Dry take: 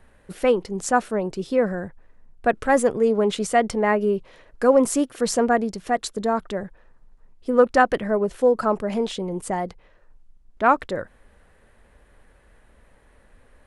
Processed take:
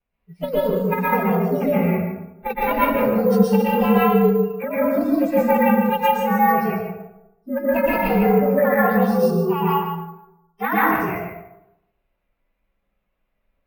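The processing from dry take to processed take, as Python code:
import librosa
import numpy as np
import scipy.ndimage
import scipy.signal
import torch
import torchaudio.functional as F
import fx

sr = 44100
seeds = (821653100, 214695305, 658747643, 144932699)

y = fx.partial_stretch(x, sr, pct=118)
y = scipy.signal.sosfilt(scipy.signal.butter(2, 3700.0, 'lowpass', fs=sr, output='sos'), y)
y = fx.hum_notches(y, sr, base_hz=60, count=5)
y = fx.noise_reduce_blind(y, sr, reduce_db=24)
y = fx.over_compress(y, sr, threshold_db=-22.0, ratio=-0.5)
y = fx.cheby_harmonics(y, sr, harmonics=(2,), levels_db=(-27,), full_scale_db=-10.0)
y = fx.vibrato(y, sr, rate_hz=1.2, depth_cents=20.0)
y = y + 10.0 ** (-9.0 / 20.0) * np.pad(y, (int(149 * sr / 1000.0), 0))[:len(y)]
y = fx.rev_plate(y, sr, seeds[0], rt60_s=0.85, hf_ratio=0.55, predelay_ms=105, drr_db=-7.0)
y = np.repeat(scipy.signal.resample_poly(y, 1, 3), 3)[:len(y)]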